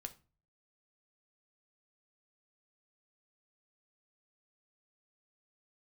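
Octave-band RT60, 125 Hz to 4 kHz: 0.70 s, 0.45 s, 0.35 s, 0.35 s, 0.30 s, 0.25 s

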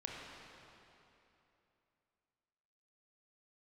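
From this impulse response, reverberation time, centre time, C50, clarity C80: 3.0 s, 150 ms, -1.0 dB, 0.0 dB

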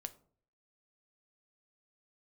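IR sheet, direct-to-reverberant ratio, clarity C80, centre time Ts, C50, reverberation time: 9.5 dB, 21.5 dB, 4 ms, 17.5 dB, 0.50 s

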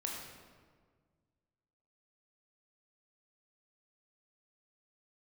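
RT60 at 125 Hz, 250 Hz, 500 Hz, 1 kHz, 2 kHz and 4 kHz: 2.3 s, 2.1 s, 1.8 s, 1.6 s, 1.3 s, 1.0 s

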